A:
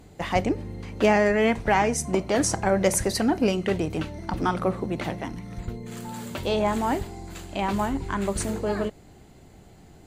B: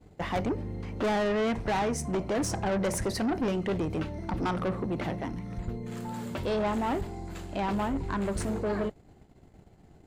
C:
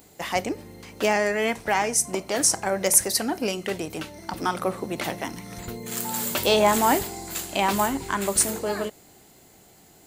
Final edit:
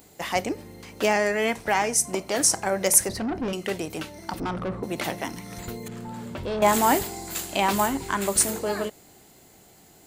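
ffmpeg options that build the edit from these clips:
-filter_complex "[1:a]asplit=3[s0][s1][s2];[2:a]asplit=4[s3][s4][s5][s6];[s3]atrim=end=3.092[s7];[s0]atrim=start=3.088:end=3.532[s8];[s4]atrim=start=3.528:end=4.402[s9];[s1]atrim=start=4.398:end=4.832[s10];[s5]atrim=start=4.828:end=5.882[s11];[s2]atrim=start=5.878:end=6.622[s12];[s6]atrim=start=6.618[s13];[s7][s8]acrossfade=d=0.004:c1=hsin:c2=hsin[s14];[s14][s9]acrossfade=d=0.004:c1=hsin:c2=hsin[s15];[s15][s10]acrossfade=d=0.004:c1=hsin:c2=hsin[s16];[s16][s11]acrossfade=d=0.004:c1=hsin:c2=hsin[s17];[s17][s12]acrossfade=d=0.004:c1=hsin:c2=hsin[s18];[s18][s13]acrossfade=d=0.004:c1=hsin:c2=hsin"

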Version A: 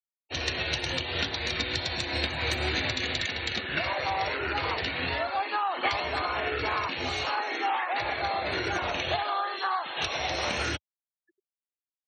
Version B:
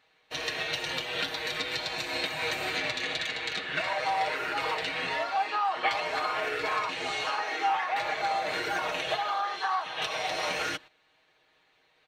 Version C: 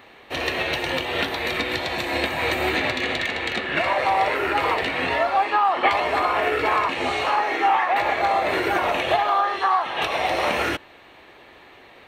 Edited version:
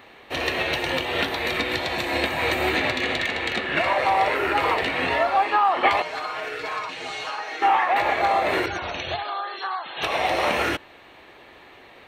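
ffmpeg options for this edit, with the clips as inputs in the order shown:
-filter_complex "[2:a]asplit=3[s0][s1][s2];[s0]atrim=end=6.022[s3];[1:a]atrim=start=6.018:end=7.622[s4];[s1]atrim=start=7.618:end=8.662[s5];[0:a]atrim=start=8.658:end=10.032[s6];[s2]atrim=start=10.028[s7];[s3][s4]acrossfade=d=0.004:c1=hsin:c2=hsin[s8];[s8][s5]acrossfade=d=0.004:c1=hsin:c2=hsin[s9];[s9][s6]acrossfade=d=0.004:c1=hsin:c2=hsin[s10];[s10][s7]acrossfade=d=0.004:c1=hsin:c2=hsin"

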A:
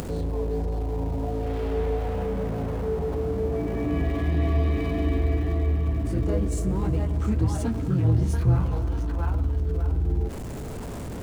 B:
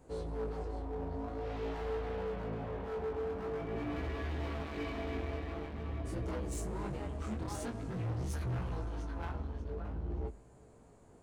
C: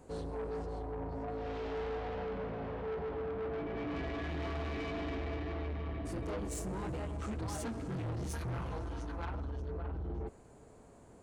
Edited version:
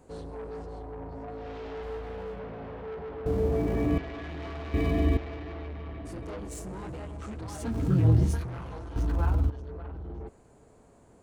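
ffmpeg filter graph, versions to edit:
-filter_complex "[0:a]asplit=4[s0][s1][s2][s3];[2:a]asplit=6[s4][s5][s6][s7][s8][s9];[s4]atrim=end=1.832[s10];[1:a]atrim=start=1.828:end=2.392[s11];[s5]atrim=start=2.388:end=3.262[s12];[s0]atrim=start=3.258:end=3.982[s13];[s6]atrim=start=3.978:end=4.742[s14];[s1]atrim=start=4.738:end=5.172[s15];[s7]atrim=start=5.168:end=7.83[s16];[s2]atrim=start=7.59:end=8.48[s17];[s8]atrim=start=8.24:end=8.962[s18];[s3]atrim=start=8.958:end=9.502[s19];[s9]atrim=start=9.498[s20];[s10][s11]acrossfade=d=0.004:c1=hsin:c2=hsin[s21];[s21][s12]acrossfade=d=0.004:c1=hsin:c2=hsin[s22];[s22][s13]acrossfade=d=0.004:c1=hsin:c2=hsin[s23];[s23][s14]acrossfade=d=0.004:c1=hsin:c2=hsin[s24];[s24][s15]acrossfade=d=0.004:c1=hsin:c2=hsin[s25];[s25][s16]acrossfade=d=0.004:c1=hsin:c2=hsin[s26];[s26][s17]acrossfade=d=0.24:c1=tri:c2=tri[s27];[s27][s18]acrossfade=d=0.24:c1=tri:c2=tri[s28];[s28][s19]acrossfade=d=0.004:c1=hsin:c2=hsin[s29];[s29][s20]acrossfade=d=0.004:c1=hsin:c2=hsin"

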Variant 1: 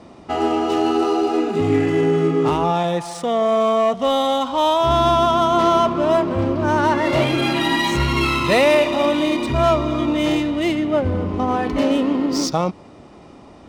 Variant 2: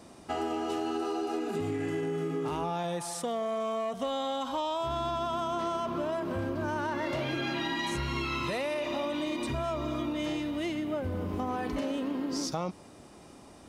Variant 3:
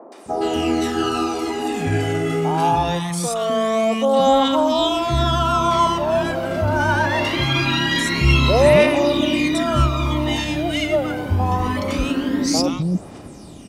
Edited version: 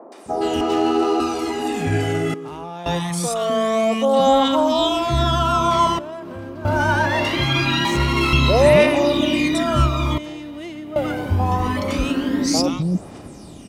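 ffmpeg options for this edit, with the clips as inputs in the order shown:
-filter_complex "[0:a]asplit=2[s0][s1];[1:a]asplit=3[s2][s3][s4];[2:a]asplit=6[s5][s6][s7][s8][s9][s10];[s5]atrim=end=0.612[s11];[s0]atrim=start=0.608:end=1.202[s12];[s6]atrim=start=1.198:end=2.342[s13];[s2]atrim=start=2.338:end=2.862[s14];[s7]atrim=start=2.858:end=5.992[s15];[s3]atrim=start=5.988:end=6.652[s16];[s8]atrim=start=6.648:end=7.852[s17];[s1]atrim=start=7.848:end=8.332[s18];[s9]atrim=start=8.328:end=10.182[s19];[s4]atrim=start=10.178:end=10.962[s20];[s10]atrim=start=10.958[s21];[s11][s12]acrossfade=d=0.004:c1=hsin:c2=hsin[s22];[s22][s13]acrossfade=d=0.004:c1=hsin:c2=hsin[s23];[s23][s14]acrossfade=d=0.004:c1=hsin:c2=hsin[s24];[s24][s15]acrossfade=d=0.004:c1=hsin:c2=hsin[s25];[s25][s16]acrossfade=d=0.004:c1=hsin:c2=hsin[s26];[s26][s17]acrossfade=d=0.004:c1=hsin:c2=hsin[s27];[s27][s18]acrossfade=d=0.004:c1=hsin:c2=hsin[s28];[s28][s19]acrossfade=d=0.004:c1=hsin:c2=hsin[s29];[s29][s20]acrossfade=d=0.004:c1=hsin:c2=hsin[s30];[s30][s21]acrossfade=d=0.004:c1=hsin:c2=hsin"

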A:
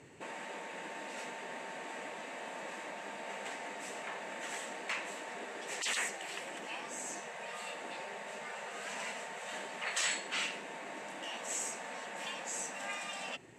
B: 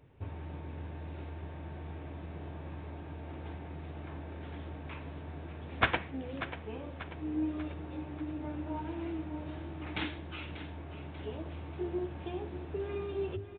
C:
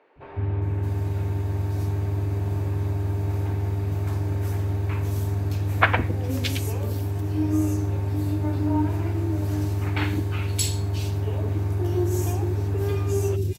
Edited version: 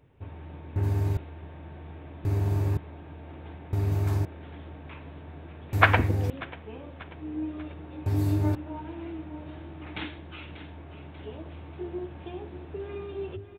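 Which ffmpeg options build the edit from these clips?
-filter_complex "[2:a]asplit=5[s0][s1][s2][s3][s4];[1:a]asplit=6[s5][s6][s7][s8][s9][s10];[s5]atrim=end=0.762[s11];[s0]atrim=start=0.758:end=1.172[s12];[s6]atrim=start=1.168:end=2.252[s13];[s1]atrim=start=2.248:end=2.772[s14];[s7]atrim=start=2.768:end=3.732[s15];[s2]atrim=start=3.728:end=4.252[s16];[s8]atrim=start=4.248:end=5.732[s17];[s3]atrim=start=5.728:end=6.302[s18];[s9]atrim=start=6.298:end=8.062[s19];[s4]atrim=start=8.058:end=8.552[s20];[s10]atrim=start=8.548[s21];[s11][s12]acrossfade=d=0.004:c1=hsin:c2=hsin[s22];[s22][s13]acrossfade=d=0.004:c1=hsin:c2=hsin[s23];[s23][s14]acrossfade=d=0.004:c1=hsin:c2=hsin[s24];[s24][s15]acrossfade=d=0.004:c1=hsin:c2=hsin[s25];[s25][s16]acrossfade=d=0.004:c1=hsin:c2=hsin[s26];[s26][s17]acrossfade=d=0.004:c1=hsin:c2=hsin[s27];[s27][s18]acrossfade=d=0.004:c1=hsin:c2=hsin[s28];[s28][s19]acrossfade=d=0.004:c1=hsin:c2=hsin[s29];[s29][s20]acrossfade=d=0.004:c1=hsin:c2=hsin[s30];[s30][s21]acrossfade=d=0.004:c1=hsin:c2=hsin"

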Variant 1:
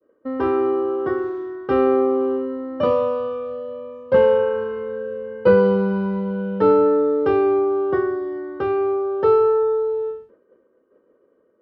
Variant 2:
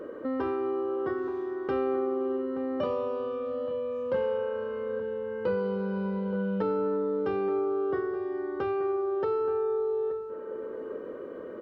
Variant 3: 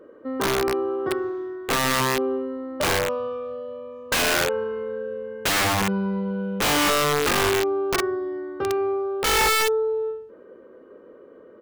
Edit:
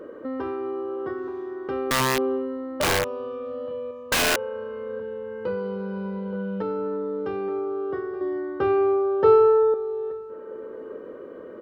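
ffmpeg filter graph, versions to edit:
-filter_complex "[2:a]asplit=2[s0][s1];[1:a]asplit=4[s2][s3][s4][s5];[s2]atrim=end=1.912[s6];[s0]atrim=start=1.908:end=3.042[s7];[s3]atrim=start=3.038:end=3.912[s8];[s1]atrim=start=3.908:end=4.362[s9];[s4]atrim=start=4.358:end=8.212[s10];[0:a]atrim=start=8.208:end=9.742[s11];[s5]atrim=start=9.738[s12];[s6][s7]acrossfade=d=0.004:c1=hsin:c2=hsin[s13];[s13][s8]acrossfade=d=0.004:c1=hsin:c2=hsin[s14];[s14][s9]acrossfade=d=0.004:c1=hsin:c2=hsin[s15];[s15][s10]acrossfade=d=0.004:c1=hsin:c2=hsin[s16];[s16][s11]acrossfade=d=0.004:c1=hsin:c2=hsin[s17];[s17][s12]acrossfade=d=0.004:c1=hsin:c2=hsin"

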